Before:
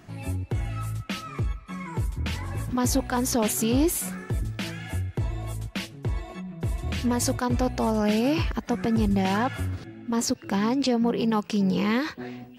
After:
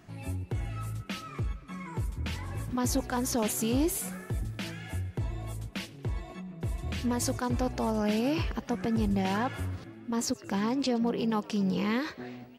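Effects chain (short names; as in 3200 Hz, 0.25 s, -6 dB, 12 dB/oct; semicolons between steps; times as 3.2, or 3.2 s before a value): frequency-shifting echo 0.115 s, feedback 64%, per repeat +87 Hz, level -22.5 dB; gain -5 dB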